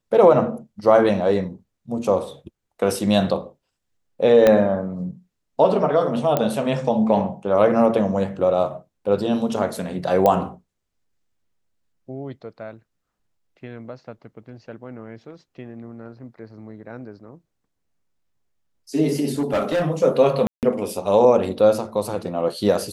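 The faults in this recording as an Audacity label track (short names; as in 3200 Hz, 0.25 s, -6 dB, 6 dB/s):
4.470000	4.470000	pop -4 dBFS
6.370000	6.370000	pop -7 dBFS
10.260000	10.260000	pop -6 dBFS
19.290000	19.860000	clipped -17 dBFS
20.470000	20.630000	gap 0.158 s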